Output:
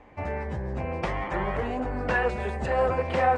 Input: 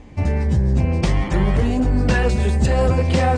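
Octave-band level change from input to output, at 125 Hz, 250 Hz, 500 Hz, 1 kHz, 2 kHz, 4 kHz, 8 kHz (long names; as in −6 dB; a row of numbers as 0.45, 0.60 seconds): −16.0 dB, −13.5 dB, −4.0 dB, −1.0 dB, −2.5 dB, −11.5 dB, below −15 dB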